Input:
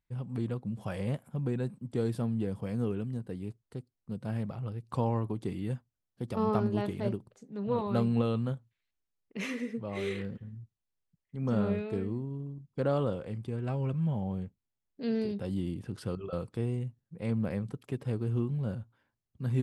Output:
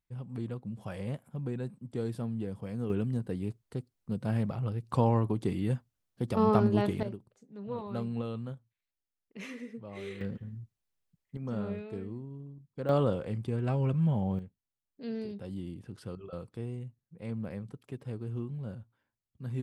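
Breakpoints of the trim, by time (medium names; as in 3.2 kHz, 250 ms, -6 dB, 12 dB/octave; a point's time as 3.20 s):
-3.5 dB
from 2.90 s +4 dB
from 7.03 s -7 dB
from 10.21 s +2 dB
from 11.37 s -6 dB
from 12.89 s +3 dB
from 14.39 s -6 dB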